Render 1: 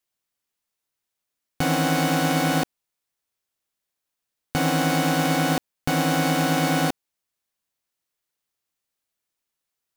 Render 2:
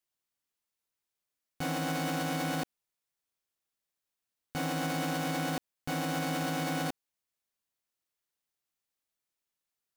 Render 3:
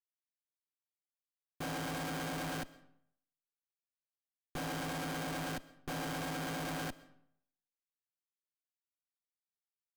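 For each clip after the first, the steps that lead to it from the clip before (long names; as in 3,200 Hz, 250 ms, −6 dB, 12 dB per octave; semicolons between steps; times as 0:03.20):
brickwall limiter −19 dBFS, peak gain reduction 9.5 dB; level −5.5 dB
comparator with hysteresis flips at −41.5 dBFS; convolution reverb RT60 0.70 s, pre-delay 85 ms, DRR 19.5 dB; level −1 dB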